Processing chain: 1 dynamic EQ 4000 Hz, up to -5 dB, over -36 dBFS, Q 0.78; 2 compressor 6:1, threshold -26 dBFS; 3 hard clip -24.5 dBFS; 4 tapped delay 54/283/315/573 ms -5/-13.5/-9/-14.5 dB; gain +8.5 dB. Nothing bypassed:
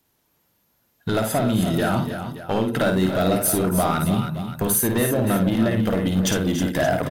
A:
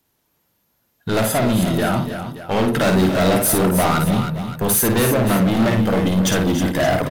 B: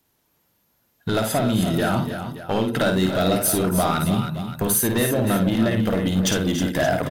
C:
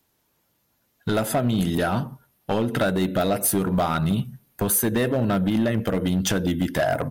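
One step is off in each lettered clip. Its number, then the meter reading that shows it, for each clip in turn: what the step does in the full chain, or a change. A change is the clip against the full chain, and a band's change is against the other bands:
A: 2, crest factor change -3.5 dB; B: 1, 4 kHz band +3.0 dB; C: 4, echo-to-direct -3.0 dB to none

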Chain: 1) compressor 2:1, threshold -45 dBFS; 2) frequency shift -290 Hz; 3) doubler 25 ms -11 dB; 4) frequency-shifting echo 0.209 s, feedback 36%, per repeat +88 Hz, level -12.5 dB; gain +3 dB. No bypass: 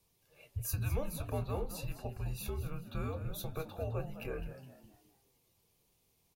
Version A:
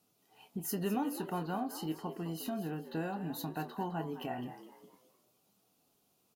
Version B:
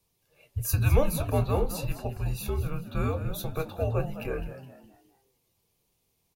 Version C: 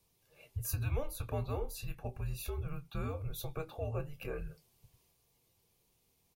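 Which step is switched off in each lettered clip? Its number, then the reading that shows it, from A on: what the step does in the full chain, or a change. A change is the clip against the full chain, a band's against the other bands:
2, 125 Hz band -8.0 dB; 1, mean gain reduction 8.5 dB; 4, 250 Hz band -2.0 dB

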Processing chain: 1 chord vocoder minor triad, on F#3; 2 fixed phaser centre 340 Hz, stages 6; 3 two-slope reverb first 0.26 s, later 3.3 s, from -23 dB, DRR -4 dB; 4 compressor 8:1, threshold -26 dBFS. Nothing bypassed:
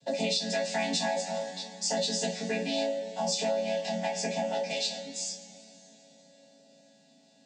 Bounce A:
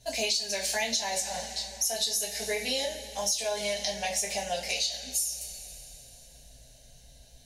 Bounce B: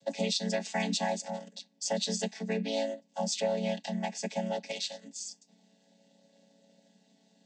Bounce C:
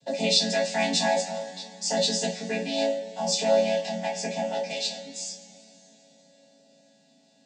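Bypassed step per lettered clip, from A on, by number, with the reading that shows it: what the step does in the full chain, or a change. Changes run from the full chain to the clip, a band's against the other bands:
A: 1, 250 Hz band -9.5 dB; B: 3, 125 Hz band +5.5 dB; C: 4, mean gain reduction 2.5 dB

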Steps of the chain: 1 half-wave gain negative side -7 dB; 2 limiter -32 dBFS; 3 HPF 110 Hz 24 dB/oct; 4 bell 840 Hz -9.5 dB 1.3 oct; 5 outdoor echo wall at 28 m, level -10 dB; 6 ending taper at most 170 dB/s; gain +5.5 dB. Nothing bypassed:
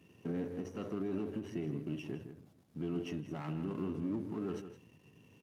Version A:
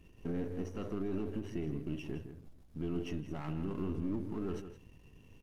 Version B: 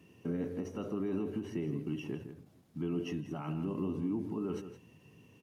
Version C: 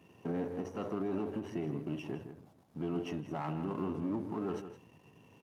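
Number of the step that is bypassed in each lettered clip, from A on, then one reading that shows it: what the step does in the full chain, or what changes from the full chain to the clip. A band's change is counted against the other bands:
3, 125 Hz band +1.5 dB; 1, distortion -9 dB; 4, 1 kHz band +6.5 dB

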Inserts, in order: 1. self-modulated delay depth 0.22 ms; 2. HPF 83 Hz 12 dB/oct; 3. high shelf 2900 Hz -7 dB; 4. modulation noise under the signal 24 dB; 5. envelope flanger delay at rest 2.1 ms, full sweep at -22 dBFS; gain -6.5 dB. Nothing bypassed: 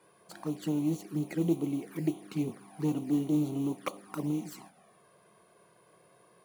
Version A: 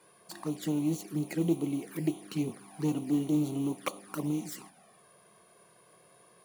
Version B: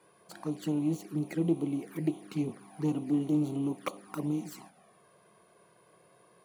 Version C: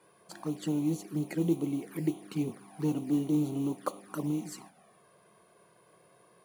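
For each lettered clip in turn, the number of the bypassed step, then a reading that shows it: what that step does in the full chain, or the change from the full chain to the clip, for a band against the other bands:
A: 3, 8 kHz band +4.5 dB; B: 4, 8 kHz band -1.5 dB; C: 1, 8 kHz band +2.0 dB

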